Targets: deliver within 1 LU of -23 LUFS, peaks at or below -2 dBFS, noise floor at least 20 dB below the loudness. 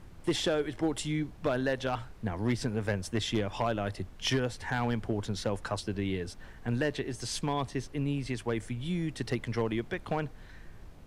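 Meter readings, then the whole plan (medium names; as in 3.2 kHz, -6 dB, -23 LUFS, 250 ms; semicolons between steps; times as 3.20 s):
clipped samples 0.4%; clipping level -21.0 dBFS; noise floor -49 dBFS; noise floor target -53 dBFS; loudness -33.0 LUFS; peak level -21.0 dBFS; loudness target -23.0 LUFS
-> clip repair -21 dBFS; noise print and reduce 6 dB; trim +10 dB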